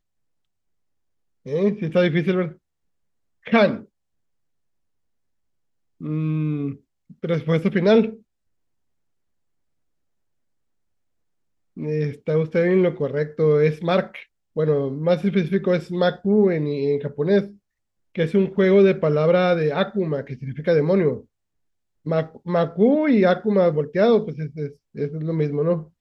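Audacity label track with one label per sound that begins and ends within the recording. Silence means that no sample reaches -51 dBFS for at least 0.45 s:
1.450000	2.570000	sound
3.430000	3.860000	sound
6.010000	8.220000	sound
11.770000	17.570000	sound
18.150000	21.250000	sound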